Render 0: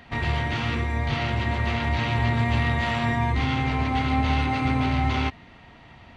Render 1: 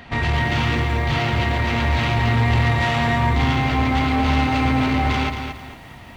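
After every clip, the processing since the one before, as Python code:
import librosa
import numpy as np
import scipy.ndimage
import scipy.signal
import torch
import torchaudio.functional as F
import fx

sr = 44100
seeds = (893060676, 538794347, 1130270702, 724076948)

y = 10.0 ** (-21.0 / 20.0) * np.tanh(x / 10.0 ** (-21.0 / 20.0))
y = fx.echo_crushed(y, sr, ms=225, feedback_pct=35, bits=9, wet_db=-7)
y = y * 10.0 ** (7.0 / 20.0)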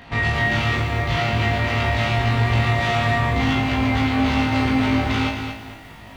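y = fx.room_flutter(x, sr, wall_m=3.2, rt60_s=0.35)
y = y * 10.0 ** (-2.5 / 20.0)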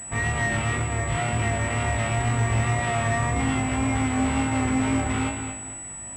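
y = scipy.ndimage.median_filter(x, 9, mode='constant')
y = fx.wow_flutter(y, sr, seeds[0], rate_hz=2.1, depth_cents=29.0)
y = fx.pwm(y, sr, carrier_hz=7900.0)
y = y * 10.0 ** (-4.0 / 20.0)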